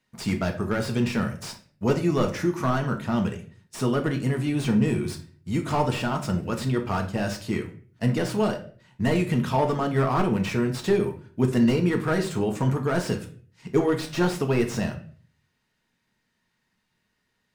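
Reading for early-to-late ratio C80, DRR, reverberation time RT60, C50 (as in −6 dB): 15.5 dB, 3.0 dB, 0.45 s, 11.5 dB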